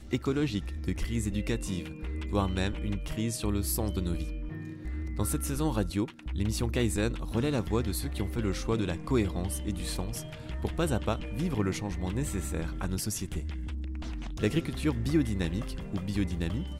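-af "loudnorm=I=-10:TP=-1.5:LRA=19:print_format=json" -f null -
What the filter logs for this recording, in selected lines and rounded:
"input_i" : "-31.9",
"input_tp" : "-14.1",
"input_lra" : "1.8",
"input_thresh" : "-41.9",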